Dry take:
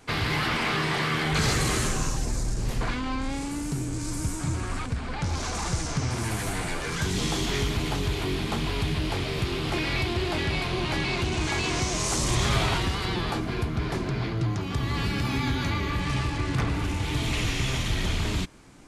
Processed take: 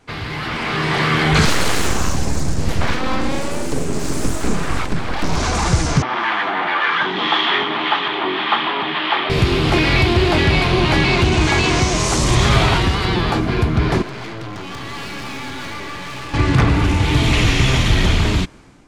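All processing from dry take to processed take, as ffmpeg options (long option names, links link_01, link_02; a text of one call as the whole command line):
ffmpeg -i in.wav -filter_complex "[0:a]asettb=1/sr,asplit=3[link_01][link_02][link_03];[link_01]atrim=end=1.454[link_04];[link_02]atrim=start=1.45:end=5.37,asetpts=PTS-STARTPTS,afade=type=in:duration=0.004:curve=qsin,afade=type=out:start_time=3.916:duration=0.004:curve=qsin,bandreject=frequency=50:width_type=h:width=6,bandreject=frequency=100:width_type=h:width=6,bandreject=frequency=150:width_type=h:width=6,bandreject=frequency=200:width_type=h:width=6,bandreject=frequency=250:width_type=h:width=6,bandreject=frequency=300:width_type=h:width=6,bandreject=frequency=350:width_type=h:width=6,bandreject=frequency=400:width_type=h:width=6,bandreject=frequency=450:width_type=h:width=6,aeval=exprs='abs(val(0))':channel_layout=same[link_05];[link_03]atrim=start=5.366[link_06];[link_04][link_05]acrossfade=duration=0.004:curve1=hsin:curve2=qsin[link_07];[link_07][link_06]acrossfade=duration=0.004:curve1=qsin:curve2=hsin,asettb=1/sr,asplit=3[link_08][link_09][link_10];[link_08]atrim=end=6.024[link_11];[link_09]atrim=start=6.02:end=9.3,asetpts=PTS-STARTPTS,afade=type=in:duration=0.004:curve=qsin,afade=type=out:start_time=3.276:duration=0.004:curve=qsin,acrossover=split=910[link_12][link_13];[link_12]aeval=exprs='val(0)*(1-0.5/2+0.5/2*cos(2*PI*1.8*n/s))':channel_layout=same[link_14];[link_13]aeval=exprs='val(0)*(1-0.5/2-0.5/2*cos(2*PI*1.8*n/s))':channel_layout=same[link_15];[link_14][link_15]amix=inputs=2:normalize=0,highpass=frequency=260:width=0.5412,highpass=frequency=260:width=1.3066,equalizer=frequency=260:width_type=q:width=4:gain=-7,equalizer=frequency=450:width_type=q:width=4:gain=-8,equalizer=frequency=870:width_type=q:width=4:gain=7,equalizer=frequency=1200:width_type=q:width=4:gain=9,equalizer=frequency=1800:width_type=q:width=4:gain=7,equalizer=frequency=3300:width_type=q:width=4:gain=8,lowpass=frequency=3500:width=0.5412,lowpass=frequency=3500:width=1.3066[link_16];[link_10]atrim=start=9.296[link_17];[link_11][link_16]acrossfade=duration=0.004:curve1=hsin:curve2=qsin[link_18];[link_18][link_17]acrossfade=duration=0.004:curve1=qsin:curve2=hsin,asettb=1/sr,asplit=3[link_19][link_20][link_21];[link_19]atrim=end=14.024[link_22];[link_20]atrim=start=14.02:end=16.34,asetpts=PTS-STARTPTS,afade=type=in:duration=0.004:curve=qsin,afade=type=out:start_time=2.316:duration=0.004:curve=qsin,highpass=frequency=460:poles=1,aeval=exprs='(tanh(100*val(0)+0.65)-tanh(0.65))/100':channel_layout=same[link_23];[link_21]atrim=start=16.336[link_24];[link_22][link_23]acrossfade=duration=0.004:curve1=hsin:curve2=qsin[link_25];[link_25][link_24]acrossfade=duration=0.004:curve1=qsin:curve2=hsin,highshelf=frequency=7200:gain=-10,dynaudnorm=framelen=340:gausssize=5:maxgain=13.5dB" out.wav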